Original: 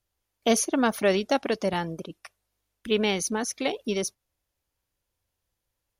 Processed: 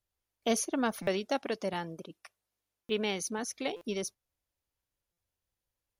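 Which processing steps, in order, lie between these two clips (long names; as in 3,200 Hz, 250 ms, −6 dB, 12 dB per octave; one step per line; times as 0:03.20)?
0:01.08–0:03.39: high-pass filter 130 Hz 6 dB per octave
buffer that repeats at 0:01.02/0:02.84/0:03.76/0:05.12, samples 256, times 8
level −7 dB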